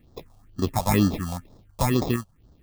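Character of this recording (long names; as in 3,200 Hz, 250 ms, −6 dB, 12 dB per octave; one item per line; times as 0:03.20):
aliases and images of a low sample rate 1,500 Hz, jitter 0%
phaser sweep stages 4, 2.1 Hz, lowest notch 310–2,400 Hz
sample-and-hold tremolo 3.7 Hz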